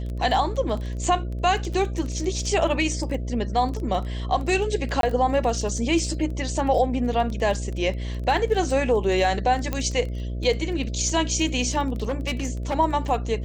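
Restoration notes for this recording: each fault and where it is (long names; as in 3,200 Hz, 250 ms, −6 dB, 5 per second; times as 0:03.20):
mains buzz 60 Hz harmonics 11 −29 dBFS
surface crackle 18 per second
0:05.01–0:05.03: drop-out 22 ms
0:09.73: click −12 dBFS
0:12.08–0:12.77: clipping −21 dBFS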